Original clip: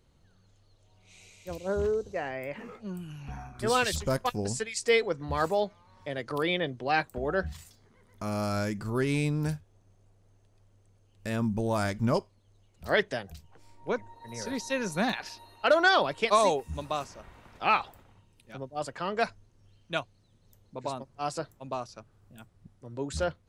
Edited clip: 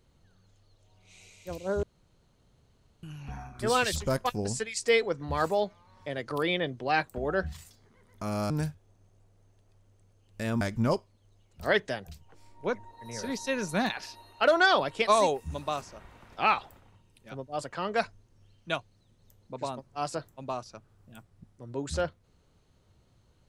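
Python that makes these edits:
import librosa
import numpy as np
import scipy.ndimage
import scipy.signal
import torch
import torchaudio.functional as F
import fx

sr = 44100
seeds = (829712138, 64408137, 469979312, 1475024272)

y = fx.edit(x, sr, fx.room_tone_fill(start_s=1.83, length_s=1.2),
    fx.cut(start_s=8.5, length_s=0.86),
    fx.cut(start_s=11.47, length_s=0.37), tone=tone)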